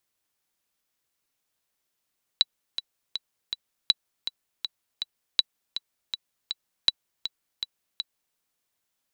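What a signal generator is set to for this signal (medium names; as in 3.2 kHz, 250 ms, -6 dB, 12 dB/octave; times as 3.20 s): metronome 161 bpm, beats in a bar 4, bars 4, 3.94 kHz, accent 11 dB -5 dBFS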